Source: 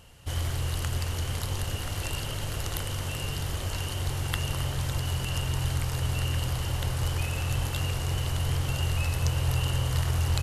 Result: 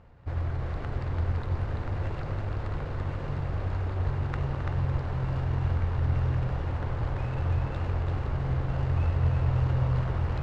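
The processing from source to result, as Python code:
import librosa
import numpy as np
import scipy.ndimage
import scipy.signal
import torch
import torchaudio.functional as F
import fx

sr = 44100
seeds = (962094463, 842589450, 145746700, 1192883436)

y = scipy.signal.medfilt(x, 15)
y = scipy.signal.sosfilt(scipy.signal.butter(2, 3100.0, 'lowpass', fs=sr, output='sos'), y)
y = y + 10.0 ** (-3.5 / 20.0) * np.pad(y, (int(337 * sr / 1000.0), 0))[:len(y)]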